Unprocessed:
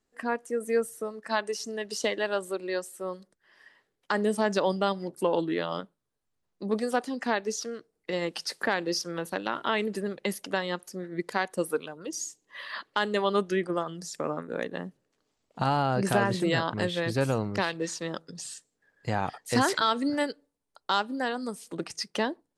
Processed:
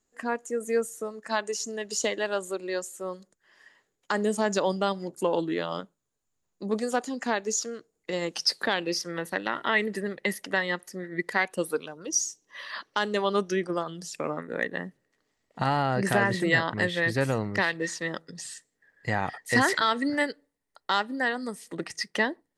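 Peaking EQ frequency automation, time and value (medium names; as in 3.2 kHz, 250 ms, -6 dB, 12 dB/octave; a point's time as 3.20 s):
peaking EQ +14.5 dB 0.21 oct
8.31 s 6.9 kHz
9.04 s 1.9 kHz
11.39 s 1.9 kHz
11.84 s 5.8 kHz
13.66 s 5.8 kHz
14.35 s 1.9 kHz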